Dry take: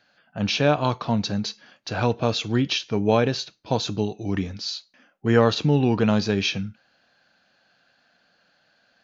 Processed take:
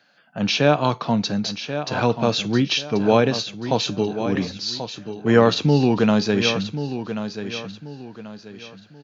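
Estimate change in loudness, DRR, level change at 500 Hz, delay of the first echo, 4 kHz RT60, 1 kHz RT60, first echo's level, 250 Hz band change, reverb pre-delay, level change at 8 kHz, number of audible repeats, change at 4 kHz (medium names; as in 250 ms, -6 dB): +2.5 dB, no reverb, +3.5 dB, 1085 ms, no reverb, no reverb, -10.0 dB, +3.5 dB, no reverb, no reading, 3, +3.5 dB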